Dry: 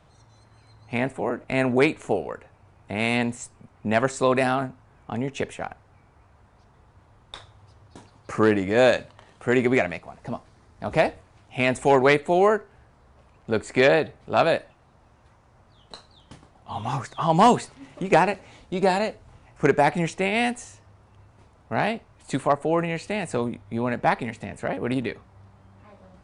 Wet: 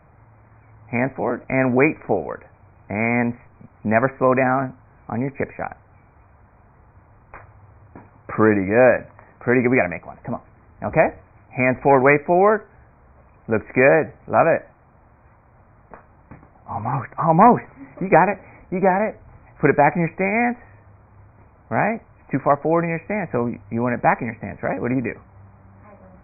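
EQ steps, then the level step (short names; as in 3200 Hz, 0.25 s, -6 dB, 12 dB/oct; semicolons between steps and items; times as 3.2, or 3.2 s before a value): brick-wall FIR low-pass 2500 Hz; bell 400 Hz -3 dB 0.27 oct; +4.5 dB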